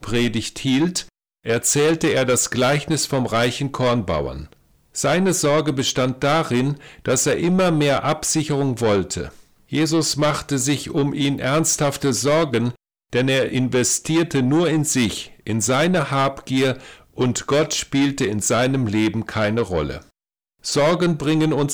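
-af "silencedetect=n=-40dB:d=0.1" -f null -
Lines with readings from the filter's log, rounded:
silence_start: 1.08
silence_end: 1.45 | silence_duration: 0.37
silence_start: 4.53
silence_end: 4.95 | silence_duration: 0.42
silence_start: 9.41
silence_end: 9.71 | silence_duration: 0.31
silence_start: 12.75
silence_end: 13.13 | silence_duration: 0.38
silence_start: 17.01
silence_end: 17.16 | silence_duration: 0.15
silence_start: 20.02
silence_end: 20.64 | silence_duration: 0.62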